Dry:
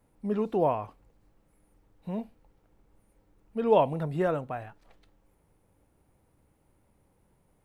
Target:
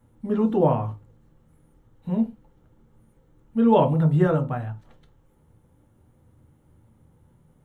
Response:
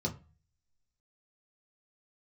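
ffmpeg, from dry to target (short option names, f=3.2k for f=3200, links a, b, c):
-filter_complex "[0:a]bandreject=f=50:t=h:w=6,bandreject=f=100:t=h:w=6,bandreject=f=150:t=h:w=6,bandreject=f=200:t=h:w=6,bandreject=f=250:t=h:w=6,bandreject=f=300:t=h:w=6,asplit=2[a][b];[1:a]atrim=start_sample=2205,afade=t=out:st=0.17:d=0.01,atrim=end_sample=7938[c];[b][c]afir=irnorm=-1:irlink=0,volume=-6.5dB[d];[a][d]amix=inputs=2:normalize=0,volume=3.5dB"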